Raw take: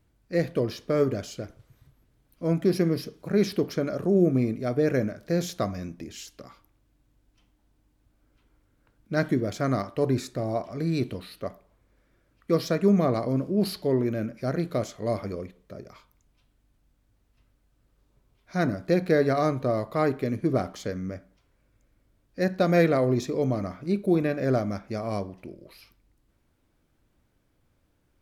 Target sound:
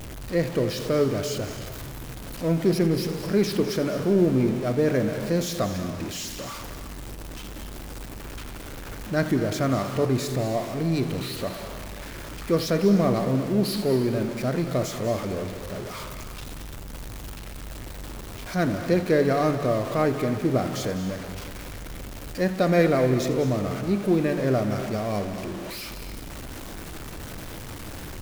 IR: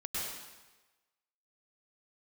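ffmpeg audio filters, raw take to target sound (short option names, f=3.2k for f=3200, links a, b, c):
-filter_complex "[0:a]aeval=exprs='val(0)+0.5*0.0266*sgn(val(0))':c=same,asplit=2[a][b];[1:a]atrim=start_sample=2205,adelay=85[c];[b][c]afir=irnorm=-1:irlink=0,volume=-11.5dB[d];[a][d]amix=inputs=2:normalize=0"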